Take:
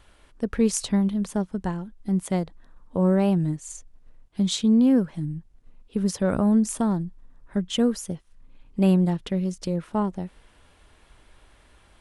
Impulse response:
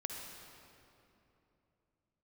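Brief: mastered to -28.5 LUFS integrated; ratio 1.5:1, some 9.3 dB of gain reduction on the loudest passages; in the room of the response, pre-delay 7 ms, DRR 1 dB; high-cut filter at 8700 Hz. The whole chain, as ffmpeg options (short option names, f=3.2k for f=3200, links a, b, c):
-filter_complex "[0:a]lowpass=8.7k,acompressor=threshold=-42dB:ratio=1.5,asplit=2[a][b];[1:a]atrim=start_sample=2205,adelay=7[c];[b][c]afir=irnorm=-1:irlink=0,volume=-1dB[d];[a][d]amix=inputs=2:normalize=0,volume=3.5dB"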